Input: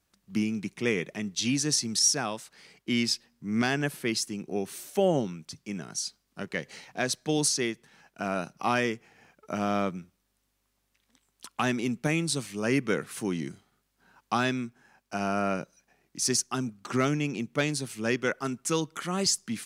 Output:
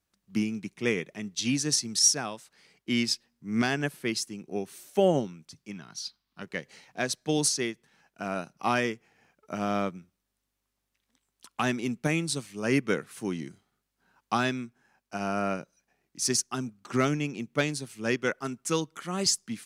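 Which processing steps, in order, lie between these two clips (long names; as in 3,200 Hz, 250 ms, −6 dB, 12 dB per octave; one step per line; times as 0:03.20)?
0:05.71–0:06.42: octave-band graphic EQ 500/1,000/4,000/8,000 Hz −9/+6/+9/−12 dB
expander for the loud parts 1.5 to 1, over −38 dBFS
level +2.5 dB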